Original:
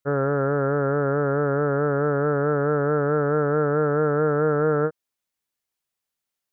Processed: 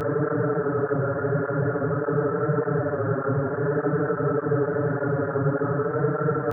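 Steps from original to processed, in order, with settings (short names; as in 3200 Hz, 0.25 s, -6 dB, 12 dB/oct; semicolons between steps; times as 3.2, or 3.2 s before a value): Paulstretch 8.8×, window 0.05 s, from 1.36; low shelf 120 Hz +6 dB; tape flanging out of phase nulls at 1.7 Hz, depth 8 ms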